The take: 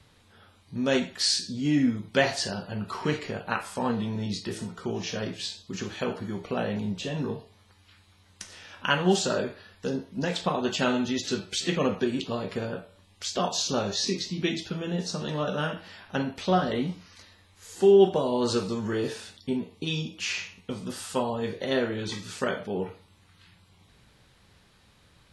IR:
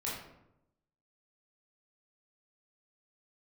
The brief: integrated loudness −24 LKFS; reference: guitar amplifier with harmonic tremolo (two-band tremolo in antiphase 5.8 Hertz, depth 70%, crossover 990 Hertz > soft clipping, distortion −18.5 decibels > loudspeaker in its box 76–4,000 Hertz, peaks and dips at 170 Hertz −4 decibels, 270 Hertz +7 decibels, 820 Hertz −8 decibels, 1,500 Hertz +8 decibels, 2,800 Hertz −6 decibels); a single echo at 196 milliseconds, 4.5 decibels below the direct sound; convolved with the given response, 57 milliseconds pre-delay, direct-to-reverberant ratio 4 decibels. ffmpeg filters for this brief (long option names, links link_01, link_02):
-filter_complex "[0:a]aecho=1:1:196:0.596,asplit=2[link_01][link_02];[1:a]atrim=start_sample=2205,adelay=57[link_03];[link_02][link_03]afir=irnorm=-1:irlink=0,volume=-7dB[link_04];[link_01][link_04]amix=inputs=2:normalize=0,acrossover=split=990[link_05][link_06];[link_05]aeval=exprs='val(0)*(1-0.7/2+0.7/2*cos(2*PI*5.8*n/s))':channel_layout=same[link_07];[link_06]aeval=exprs='val(0)*(1-0.7/2-0.7/2*cos(2*PI*5.8*n/s))':channel_layout=same[link_08];[link_07][link_08]amix=inputs=2:normalize=0,asoftclip=threshold=-15dB,highpass=76,equalizer=frequency=170:width_type=q:width=4:gain=-4,equalizer=frequency=270:width_type=q:width=4:gain=7,equalizer=frequency=820:width_type=q:width=4:gain=-8,equalizer=frequency=1500:width_type=q:width=4:gain=8,equalizer=frequency=2800:width_type=q:width=4:gain=-6,lowpass=frequency=4000:width=0.5412,lowpass=frequency=4000:width=1.3066,volume=4dB"